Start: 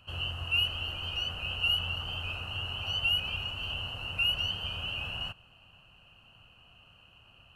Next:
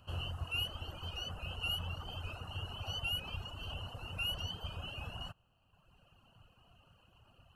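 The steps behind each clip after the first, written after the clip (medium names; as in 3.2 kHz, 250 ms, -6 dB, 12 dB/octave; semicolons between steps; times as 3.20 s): peaking EQ 2.5 kHz -11.5 dB 1.1 oct; reverb removal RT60 1.4 s; trim +1 dB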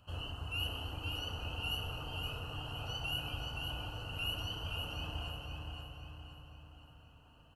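on a send: feedback delay 520 ms, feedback 44%, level -5 dB; on the sum: FDN reverb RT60 3.3 s, low-frequency decay 1.2×, high-frequency decay 0.45×, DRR 0.5 dB; trim -2.5 dB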